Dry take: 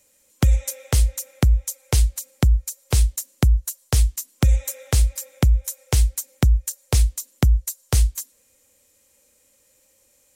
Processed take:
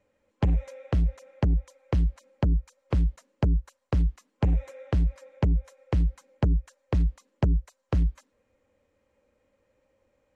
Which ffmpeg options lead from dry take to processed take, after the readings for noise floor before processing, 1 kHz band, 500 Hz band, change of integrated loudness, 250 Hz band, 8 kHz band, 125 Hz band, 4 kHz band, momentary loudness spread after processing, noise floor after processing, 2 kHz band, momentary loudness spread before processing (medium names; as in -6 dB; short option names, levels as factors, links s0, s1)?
-61 dBFS, -4.0 dB, -2.5 dB, -6.5 dB, -1.0 dB, under -30 dB, -6.0 dB, -17.5 dB, 4 LU, -75 dBFS, -9.5 dB, 4 LU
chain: -af "lowpass=1500,aeval=exprs='0.376*(cos(1*acos(clip(val(0)/0.376,-1,1)))-cos(1*PI/2))+0.075*(cos(3*acos(clip(val(0)/0.376,-1,1)))-cos(3*PI/2))+0.119*(cos(5*acos(clip(val(0)/0.376,-1,1)))-cos(5*PI/2))+0.0299*(cos(7*acos(clip(val(0)/0.376,-1,1)))-cos(7*PI/2))':c=same,volume=0.631"